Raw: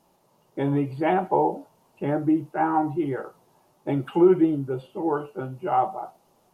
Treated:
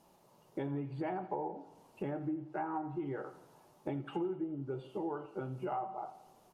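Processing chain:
treble cut that deepens with the level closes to 1,400 Hz, closed at −16 dBFS
downward compressor 5 to 1, threshold −35 dBFS, peak gain reduction 20 dB
on a send: repeating echo 85 ms, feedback 58%, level −16 dB
on the sum: level −1.5 dB

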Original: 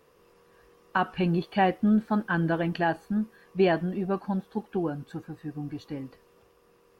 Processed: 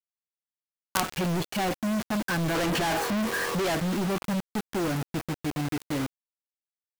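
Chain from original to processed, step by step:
0:02.55–0:03.75: mid-hump overdrive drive 31 dB, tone 1,700 Hz, clips at −12 dBFS
log-companded quantiser 2 bits
level −1 dB

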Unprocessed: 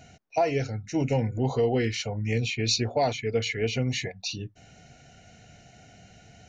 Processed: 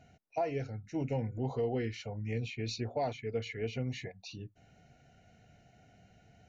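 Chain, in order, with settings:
high-shelf EQ 3,400 Hz −11.5 dB
level −8.5 dB

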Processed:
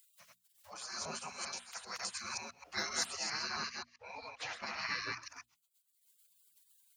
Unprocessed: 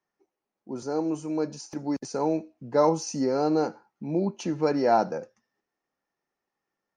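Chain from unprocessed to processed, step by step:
delay that plays each chunk backwards 132 ms, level −1 dB
gate on every frequency bin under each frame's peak −30 dB weak
0:03.12–0:05.21: low-pass filter 6,300 Hz → 3,700 Hz 12 dB per octave
upward compression, threshold −51 dBFS
high-pass filter 110 Hz 12 dB per octave
mains-hum notches 60/120/180/240/300 Hz
level +7 dB

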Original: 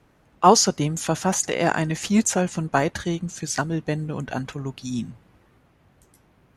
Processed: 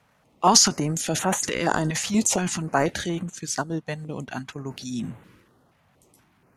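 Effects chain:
high-pass filter 190 Hz 6 dB per octave
transient designer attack −1 dB, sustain +9 dB, from 0:03.28 sustain −6 dB, from 0:04.66 sustain +8 dB
notch on a step sequencer 4.2 Hz 340–5,000 Hz

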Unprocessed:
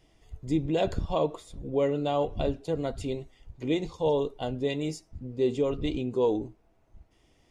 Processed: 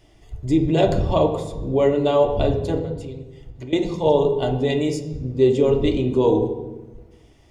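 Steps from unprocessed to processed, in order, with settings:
0:02.78–0:03.73: downward compressor 12 to 1, threshold −42 dBFS, peak gain reduction 19.5 dB
on a send: convolution reverb RT60 1.1 s, pre-delay 3 ms, DRR 4 dB
on the sum: level +7 dB

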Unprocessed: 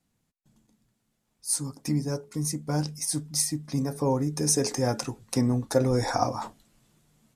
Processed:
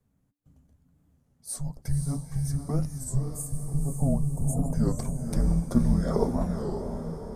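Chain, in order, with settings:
high-shelf EQ 6,300 Hz −6.5 dB
frequency shifter −290 Hz
parametric band 3,900 Hz −15 dB 2.8 octaves
in parallel at −1 dB: downward compressor, threshold −38 dBFS, peak gain reduction 19 dB
on the sum: gain on a spectral selection 0:02.89–0:04.76, 1,200–6,300 Hz −27 dB
feedback delay with all-pass diffusion 522 ms, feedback 50%, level −5.5 dB
wow of a warped record 33 1/3 rpm, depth 160 cents

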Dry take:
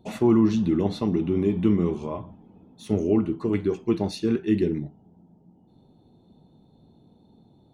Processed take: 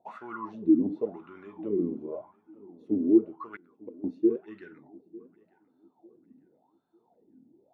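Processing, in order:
0:03.56–0:04.04: gate with flip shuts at −18 dBFS, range −26 dB
LFO wah 0.91 Hz 260–1,500 Hz, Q 11
feedback echo with a low-pass in the loop 899 ms, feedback 32%, low-pass 3,500 Hz, level −22.5 dB
level +8 dB

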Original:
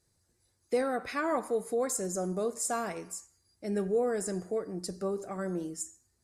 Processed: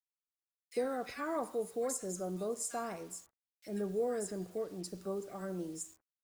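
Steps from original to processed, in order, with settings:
bit reduction 9 bits
multiband delay without the direct sound highs, lows 40 ms, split 1,700 Hz
level −5.5 dB

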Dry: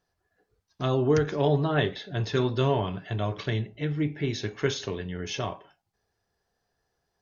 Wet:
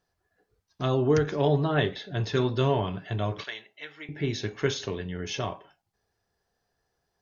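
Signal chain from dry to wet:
0:03.44–0:04.09: high-pass filter 1,000 Hz 12 dB per octave

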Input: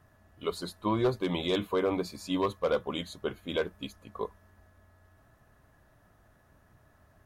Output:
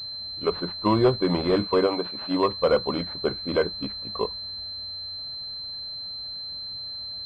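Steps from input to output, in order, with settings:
0:01.86–0:02.51: high-pass filter 650 Hz → 180 Hz 6 dB per octave
switching amplifier with a slow clock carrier 4,100 Hz
level +7.5 dB

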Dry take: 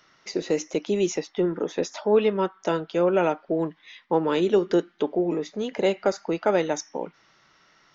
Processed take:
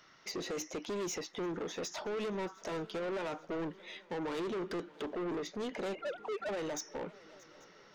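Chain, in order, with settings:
0:05.95–0:06.49: three sine waves on the formant tracks
brickwall limiter −18 dBFS, peak gain reduction 8 dB
soft clipping −32.5 dBFS, distortion −7 dB
on a send: feedback echo with a long and a short gap by turns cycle 838 ms, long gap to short 3 to 1, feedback 47%, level −22 dB
on the sum: level −2 dB

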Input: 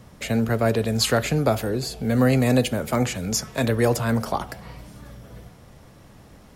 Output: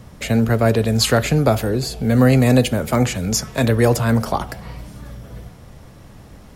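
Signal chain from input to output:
low-shelf EQ 120 Hz +5.5 dB
level +4 dB

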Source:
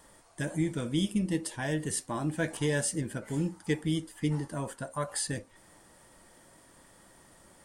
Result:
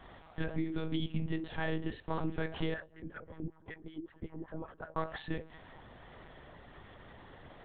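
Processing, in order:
hum removal 331.8 Hz, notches 5
downward compressor 6 to 1, threshold −37 dBFS, peak gain reduction 13 dB
0:02.74–0:04.97: LFO wah 5.3 Hz 210–1,700 Hz, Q 2.1
one-pitch LPC vocoder at 8 kHz 160 Hz
level +6 dB

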